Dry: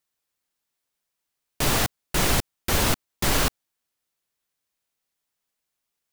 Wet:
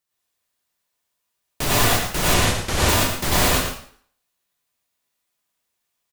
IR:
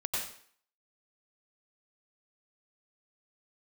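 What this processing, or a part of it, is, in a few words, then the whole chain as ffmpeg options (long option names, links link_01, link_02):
bathroom: -filter_complex "[1:a]atrim=start_sample=2205[link_01];[0:a][link_01]afir=irnorm=-1:irlink=0,asettb=1/sr,asplit=3[link_02][link_03][link_04];[link_02]atrim=end=2.344[link_05];[link_03]atrim=start=2.34:end=2.89,asetpts=PTS-STARTPTS,afade=type=in:duration=0.004:curve=qsin,afade=type=out:start_time=0.546:duration=0.004:curve=qsin,lowpass=10000[link_06];[link_04]atrim=start=2.886[link_07];[link_05][link_06]acrossfade=duration=0.004:curve1=hsin:curve2=qsin[link_08];[link_08][link_07]acrossfade=duration=0.004:curve1=qsin:curve2=hsin,aecho=1:1:112:0.355"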